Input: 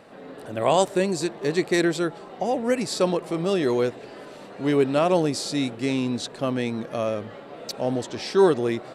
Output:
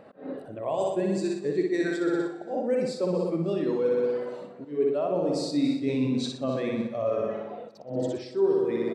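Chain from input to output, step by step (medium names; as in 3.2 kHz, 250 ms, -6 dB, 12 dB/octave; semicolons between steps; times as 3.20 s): reverb removal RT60 1.4 s; flutter echo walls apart 10.5 m, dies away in 1.1 s; reverse; compression 8:1, threshold -33 dBFS, peak gain reduction 21.5 dB; reverse; slow attack 161 ms; on a send: feedback delay 282 ms, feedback 41%, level -13 dB; on the sum: spectral contrast expander 1.5:1; trim +8 dB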